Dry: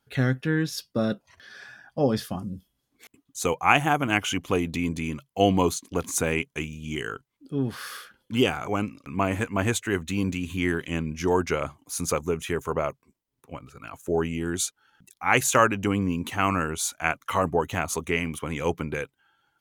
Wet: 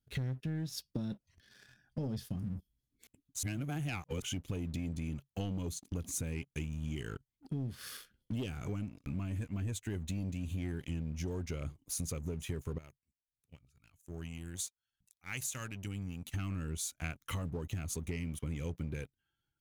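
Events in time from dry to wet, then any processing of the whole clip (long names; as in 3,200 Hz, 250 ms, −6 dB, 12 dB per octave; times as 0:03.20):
0:03.43–0:04.22: reverse
0:12.78–0:16.34: guitar amp tone stack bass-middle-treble 5-5-5
whole clip: guitar amp tone stack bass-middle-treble 10-0-1; leveller curve on the samples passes 2; downward compressor 10 to 1, threshold −45 dBFS; level +10.5 dB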